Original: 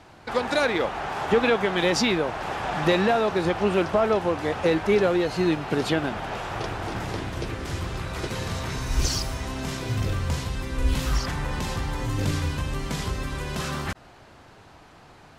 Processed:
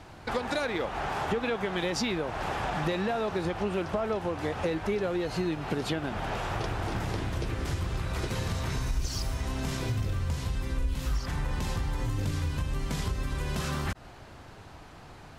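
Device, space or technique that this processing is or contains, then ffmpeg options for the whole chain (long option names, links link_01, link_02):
ASMR close-microphone chain: -af "lowshelf=frequency=120:gain=7.5,acompressor=threshold=-28dB:ratio=4,highshelf=frequency=11000:gain=4"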